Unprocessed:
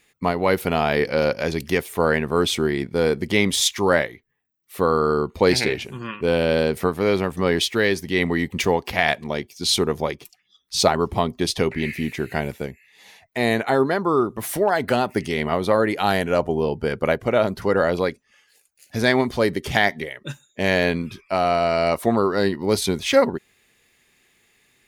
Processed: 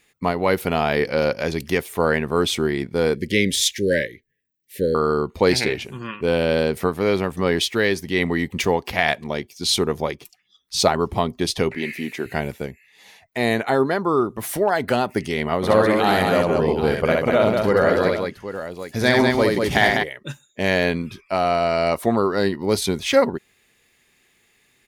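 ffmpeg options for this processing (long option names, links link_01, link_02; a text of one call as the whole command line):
ffmpeg -i in.wav -filter_complex "[0:a]asettb=1/sr,asplit=3[link_01][link_02][link_03];[link_01]atrim=end=3.154[link_04];[link_02]atrim=start=3.15:end=4.95,asetpts=PTS-STARTPTS,afade=type=in:duration=0.004:curve=qsin,afade=type=out:start_time=1.796:duration=0.004:curve=qsin,asuperstop=centerf=970:order=20:qfactor=0.97[link_05];[link_03]atrim=start=4.946[link_06];[link_04][link_05]acrossfade=duration=0.004:curve1=hsin:curve2=qsin[link_07];[link_07][link_06]acrossfade=duration=0.004:curve1=qsin:curve2=hsin,asettb=1/sr,asplit=3[link_08][link_09][link_10];[link_08]atrim=end=11.754[link_11];[link_09]atrim=start=11.75:end=12.26,asetpts=PTS-STARTPTS,afade=type=in:duration=0.004:curve=qsin,afade=type=out:start_time=0.506:duration=0.004:curve=qsin,highpass=230[link_12];[link_10]atrim=start=12.256[link_13];[link_11][link_12]acrossfade=duration=0.004:curve1=hsin:curve2=qsin[link_14];[link_14][link_13]acrossfade=duration=0.004:curve1=qsin:curve2=hsin,asplit=3[link_15][link_16][link_17];[link_15]afade=type=out:start_time=15.62:duration=0.02[link_18];[link_16]aecho=1:1:65|197|784:0.708|0.631|0.282,afade=type=in:start_time=15.62:duration=0.02,afade=type=out:start_time=20.02:duration=0.02[link_19];[link_17]afade=type=in:start_time=20.02:duration=0.02[link_20];[link_18][link_19][link_20]amix=inputs=3:normalize=0" out.wav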